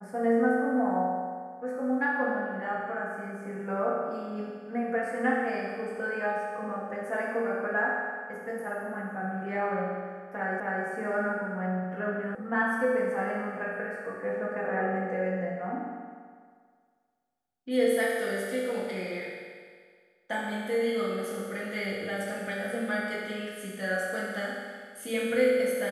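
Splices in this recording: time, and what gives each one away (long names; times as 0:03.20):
0:10.60: the same again, the last 0.26 s
0:12.35: cut off before it has died away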